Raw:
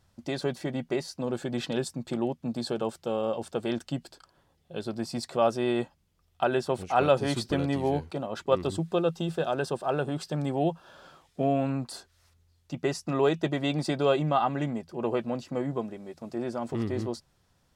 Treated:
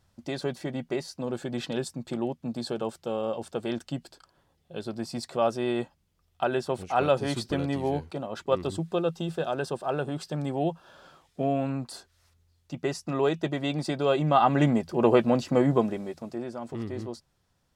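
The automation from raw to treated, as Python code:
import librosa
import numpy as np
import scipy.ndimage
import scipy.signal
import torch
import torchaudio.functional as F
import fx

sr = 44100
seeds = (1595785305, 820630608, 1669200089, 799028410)

y = fx.gain(x, sr, db=fx.line((14.06, -1.0), (14.65, 8.5), (15.99, 8.5), (16.48, -4.0)))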